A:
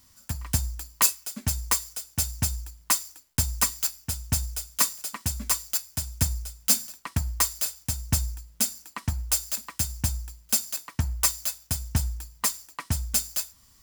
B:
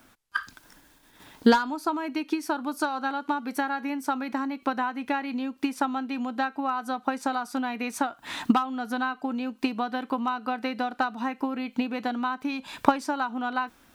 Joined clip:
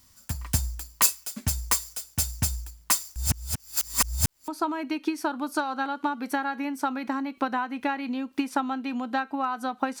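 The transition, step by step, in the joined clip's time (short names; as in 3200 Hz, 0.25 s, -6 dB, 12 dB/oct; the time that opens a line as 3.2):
A
3.16–4.48 reverse
4.48 switch to B from 1.73 s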